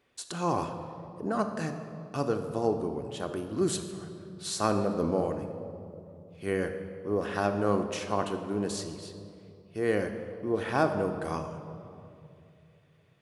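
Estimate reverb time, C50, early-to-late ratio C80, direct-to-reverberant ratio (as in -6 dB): 2.6 s, 8.0 dB, 9.0 dB, 5.5 dB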